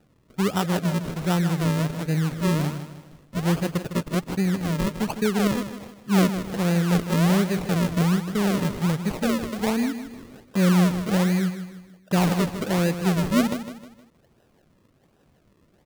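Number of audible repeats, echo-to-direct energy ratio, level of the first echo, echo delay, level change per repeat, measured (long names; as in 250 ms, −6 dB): 4, −9.5 dB, −10.5 dB, 156 ms, −8.0 dB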